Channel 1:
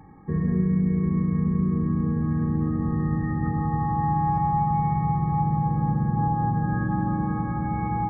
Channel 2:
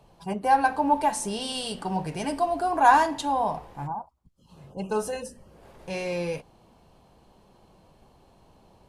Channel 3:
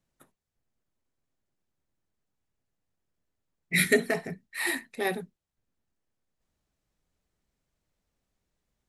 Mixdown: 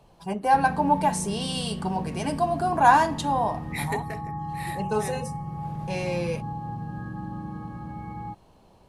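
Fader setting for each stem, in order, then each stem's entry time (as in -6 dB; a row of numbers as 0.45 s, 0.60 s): -10.0 dB, +0.5 dB, -9.5 dB; 0.25 s, 0.00 s, 0.00 s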